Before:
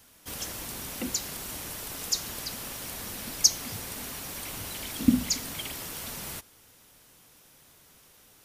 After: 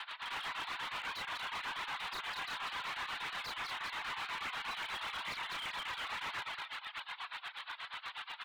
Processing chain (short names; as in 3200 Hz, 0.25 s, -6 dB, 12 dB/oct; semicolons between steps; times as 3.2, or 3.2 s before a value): steep high-pass 890 Hz 36 dB/oct; high shelf 2300 Hz -6 dB; doubler 32 ms -4 dB; feedback echo 0.197 s, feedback 45%, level -5 dB; reverb removal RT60 0.76 s; steep low-pass 4100 Hz 72 dB/oct; tremolo 8.3 Hz, depth 92%; in parallel at +2 dB: vocal rider within 5 dB 0.5 s; on the sum: sine folder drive 10 dB, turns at -23.5 dBFS; limiter -35.5 dBFS, peak gain reduction 12 dB; slew limiter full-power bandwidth 20 Hz; gain +3 dB